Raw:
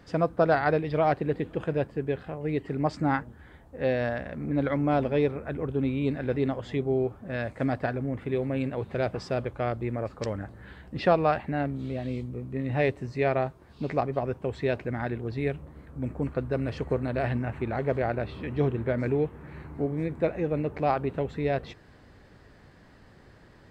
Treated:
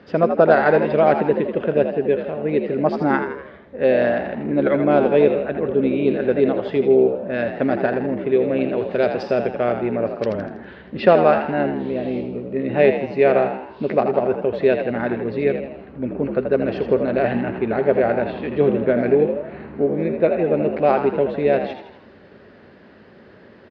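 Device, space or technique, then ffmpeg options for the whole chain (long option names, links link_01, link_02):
frequency-shifting delay pedal into a guitar cabinet: -filter_complex "[0:a]asettb=1/sr,asplit=3[link_01][link_02][link_03];[link_01]atrim=end=8.784[link_04];[link_02]atrim=start=8.78:end=9.23,asetpts=PTS-STARTPTS,afade=type=in:duration=0.004:curve=qsin,afade=type=out:start_time=0.446:duration=0.004:curve=qsin,bass=frequency=250:gain=-2,treble=frequency=4000:gain=9[link_05];[link_03]atrim=start=9.226[link_06];[link_04][link_05]acrossfade=duration=0.004:curve1=hsin:curve2=qsin[link_07];[link_07][link_06]acrossfade=duration=0.004:curve1=qsin:curve2=hsin,asplit=7[link_08][link_09][link_10][link_11][link_12][link_13][link_14];[link_09]adelay=81,afreqshift=64,volume=-8dB[link_15];[link_10]adelay=162,afreqshift=128,volume=-14dB[link_16];[link_11]adelay=243,afreqshift=192,volume=-20dB[link_17];[link_12]adelay=324,afreqshift=256,volume=-26.1dB[link_18];[link_13]adelay=405,afreqshift=320,volume=-32.1dB[link_19];[link_14]adelay=486,afreqshift=384,volume=-38.1dB[link_20];[link_08][link_15][link_16][link_17][link_18][link_19][link_20]amix=inputs=7:normalize=0,highpass=100,equalizer=frequency=130:width_type=q:width=4:gain=-6,equalizer=frequency=220:width_type=q:width=4:gain=7,equalizer=frequency=400:width_type=q:width=4:gain=8,equalizer=frequency=580:width_type=q:width=4:gain=7,equalizer=frequency=1500:width_type=q:width=4:gain=4,equalizer=frequency=2700:width_type=q:width=4:gain=4,lowpass=frequency=4500:width=0.5412,lowpass=frequency=4500:width=1.3066,volume=4dB"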